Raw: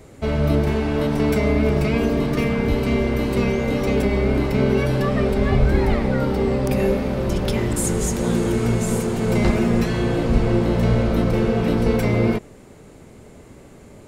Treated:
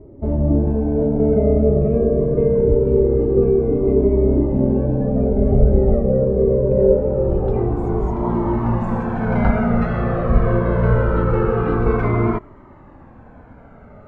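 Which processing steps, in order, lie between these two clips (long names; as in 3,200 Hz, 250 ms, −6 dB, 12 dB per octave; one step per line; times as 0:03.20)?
low-pass filter sweep 460 Hz → 1,300 Hz, 0:06.56–0:09.16
flanger whose copies keep moving one way falling 0.24 Hz
level +5 dB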